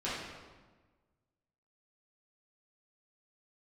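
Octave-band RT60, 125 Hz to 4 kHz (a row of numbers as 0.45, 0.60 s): 1.7, 1.6, 1.4, 1.3, 1.1, 0.95 s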